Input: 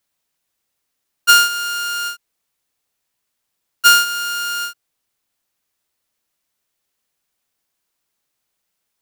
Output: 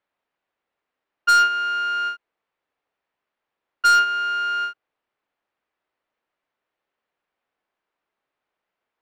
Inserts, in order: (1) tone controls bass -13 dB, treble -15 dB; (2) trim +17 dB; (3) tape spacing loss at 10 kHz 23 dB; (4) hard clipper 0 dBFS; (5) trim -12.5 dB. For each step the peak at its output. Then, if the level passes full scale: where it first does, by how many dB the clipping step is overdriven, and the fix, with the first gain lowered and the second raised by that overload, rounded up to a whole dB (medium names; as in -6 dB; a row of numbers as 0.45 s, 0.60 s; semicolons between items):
-4.5 dBFS, +12.5 dBFS, +8.5 dBFS, 0.0 dBFS, -12.5 dBFS; step 2, 8.5 dB; step 2 +8 dB, step 5 -3.5 dB